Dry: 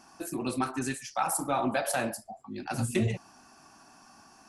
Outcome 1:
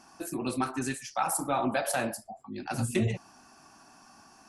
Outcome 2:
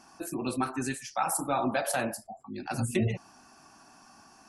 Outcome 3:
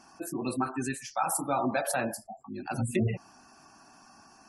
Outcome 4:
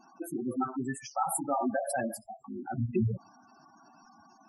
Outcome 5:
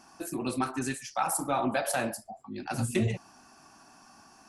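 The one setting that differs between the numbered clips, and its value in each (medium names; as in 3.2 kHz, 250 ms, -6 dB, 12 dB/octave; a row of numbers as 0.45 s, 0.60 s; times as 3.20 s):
spectral gate, under each frame's peak: -50 dB, -35 dB, -25 dB, -10 dB, -60 dB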